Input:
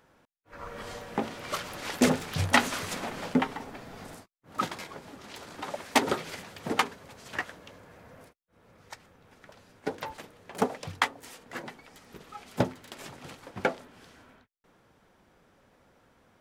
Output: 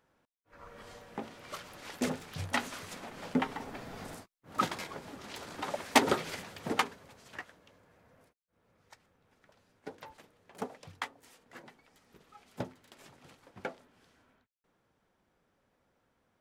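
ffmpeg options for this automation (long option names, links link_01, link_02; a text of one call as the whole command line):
ffmpeg -i in.wav -af "afade=type=in:start_time=3.11:duration=0.68:silence=0.316228,afade=type=out:start_time=6.27:duration=1.18:silence=0.251189" out.wav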